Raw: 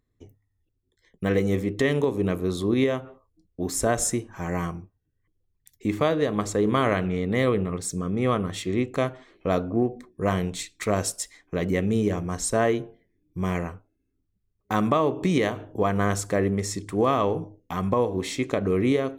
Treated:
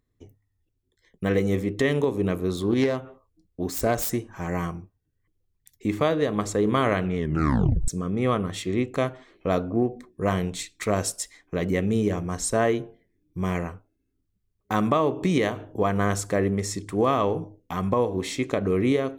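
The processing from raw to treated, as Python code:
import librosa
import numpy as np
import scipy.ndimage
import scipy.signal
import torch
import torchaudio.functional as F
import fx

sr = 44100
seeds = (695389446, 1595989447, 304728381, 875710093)

y = fx.self_delay(x, sr, depth_ms=0.11, at=(2.55, 4.47))
y = fx.edit(y, sr, fx.tape_stop(start_s=7.16, length_s=0.72), tone=tone)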